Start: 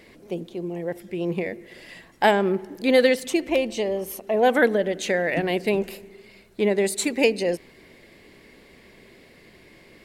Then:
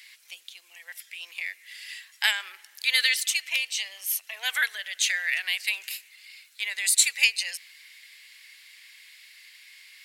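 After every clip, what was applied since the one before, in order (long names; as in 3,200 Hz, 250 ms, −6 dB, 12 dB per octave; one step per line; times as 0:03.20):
Bessel high-pass filter 2,800 Hz, order 4
level +9 dB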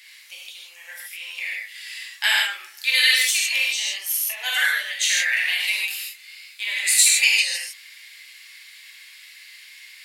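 reverb whose tail is shaped and stops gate 180 ms flat, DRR −5 dB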